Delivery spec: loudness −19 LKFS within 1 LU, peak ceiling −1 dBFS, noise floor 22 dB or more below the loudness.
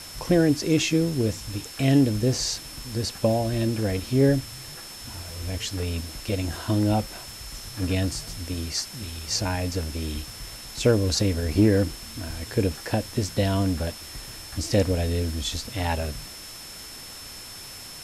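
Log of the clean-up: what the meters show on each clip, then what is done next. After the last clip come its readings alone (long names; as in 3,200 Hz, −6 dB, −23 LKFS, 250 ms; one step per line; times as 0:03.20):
interfering tone 5,300 Hz; level of the tone −42 dBFS; background noise floor −41 dBFS; target noise floor −48 dBFS; integrated loudness −25.5 LKFS; sample peak −9.0 dBFS; target loudness −19.0 LKFS
→ notch filter 5,300 Hz, Q 30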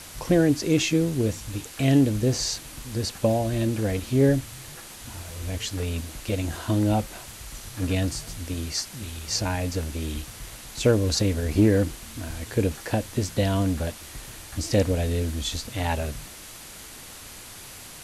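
interfering tone none found; background noise floor −43 dBFS; target noise floor −48 dBFS
→ noise reduction from a noise print 6 dB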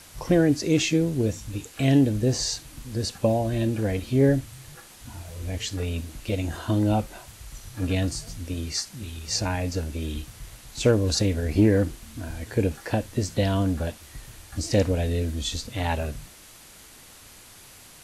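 background noise floor −49 dBFS; integrated loudness −25.5 LKFS; sample peak −9.0 dBFS; target loudness −19.0 LKFS
→ level +6.5 dB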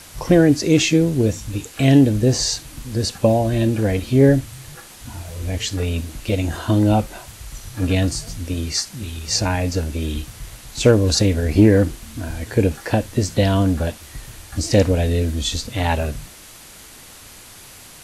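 integrated loudness −19.0 LKFS; sample peak −2.5 dBFS; background noise floor −42 dBFS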